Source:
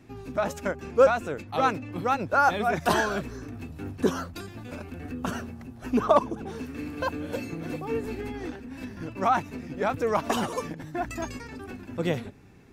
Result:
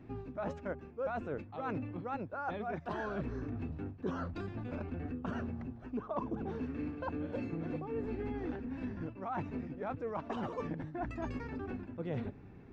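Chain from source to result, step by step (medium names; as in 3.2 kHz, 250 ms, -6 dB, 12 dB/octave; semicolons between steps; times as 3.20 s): reverse; compression 8:1, threshold -34 dBFS, peak gain reduction 20 dB; reverse; tape spacing loss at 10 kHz 34 dB; trim +1 dB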